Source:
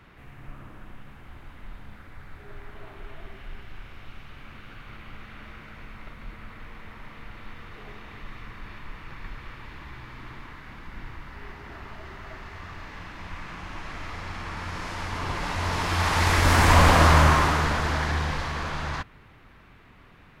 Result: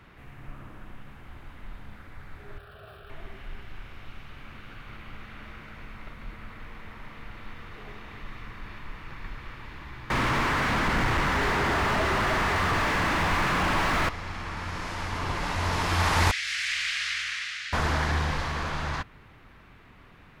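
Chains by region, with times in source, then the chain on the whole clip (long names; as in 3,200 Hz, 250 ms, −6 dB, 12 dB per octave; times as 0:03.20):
0:02.58–0:03.10: converter with a step at zero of −50.5 dBFS + high-pass filter 66 Hz + phaser with its sweep stopped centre 1,400 Hz, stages 8
0:10.10–0:14.09: low-shelf EQ 200 Hz +12 dB + mid-hump overdrive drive 46 dB, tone 1,600 Hz, clips at −16.5 dBFS
0:16.31–0:17.73: inverse Chebyshev high-pass filter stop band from 1,000 Hz + high-frequency loss of the air 87 metres
whole clip: no processing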